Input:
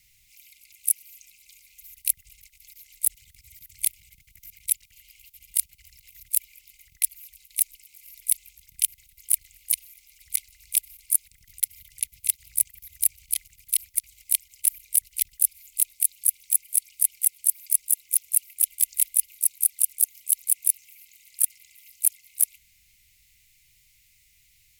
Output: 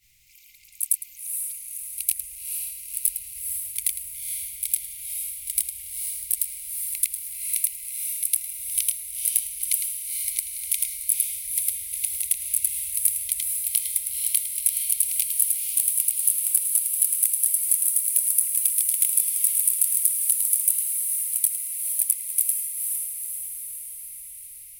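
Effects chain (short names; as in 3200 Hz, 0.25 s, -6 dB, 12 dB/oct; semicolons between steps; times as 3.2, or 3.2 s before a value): short-time reversal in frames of 0.215 s; diffused feedback echo 0.489 s, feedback 62%, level -3.5 dB; gain +3.5 dB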